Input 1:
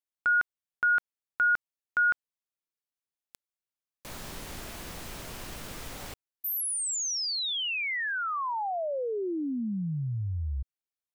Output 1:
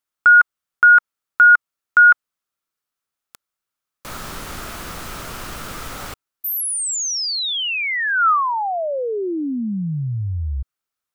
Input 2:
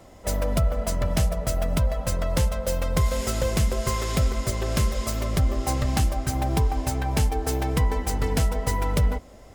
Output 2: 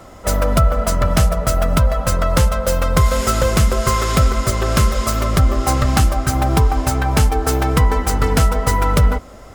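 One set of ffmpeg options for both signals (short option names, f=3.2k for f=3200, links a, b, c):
-af "equalizer=f=1.3k:w=3.2:g=9.5,volume=8dB"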